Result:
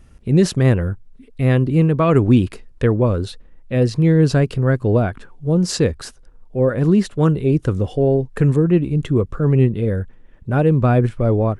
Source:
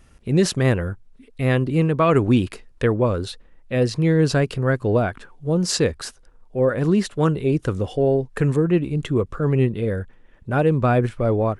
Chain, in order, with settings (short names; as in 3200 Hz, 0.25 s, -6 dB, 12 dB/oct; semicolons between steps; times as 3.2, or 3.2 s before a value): low shelf 390 Hz +7.5 dB; gain -1.5 dB